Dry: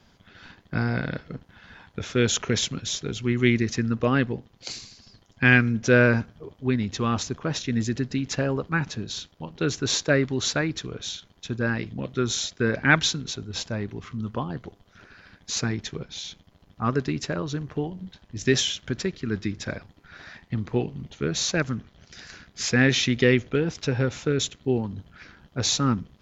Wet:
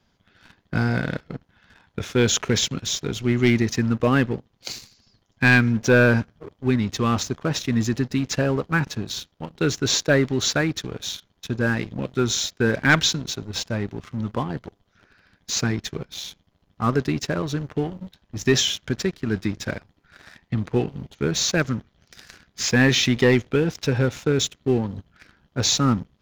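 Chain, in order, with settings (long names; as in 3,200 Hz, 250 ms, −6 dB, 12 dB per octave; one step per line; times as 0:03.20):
leveller curve on the samples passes 2
level −4 dB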